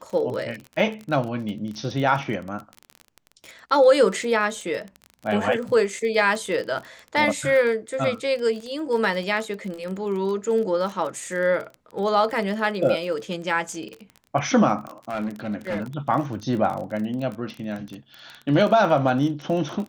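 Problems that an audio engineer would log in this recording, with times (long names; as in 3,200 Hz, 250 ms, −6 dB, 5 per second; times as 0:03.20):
surface crackle 28 per second −29 dBFS
0:15.09–0:15.84: clipping −22.5 dBFS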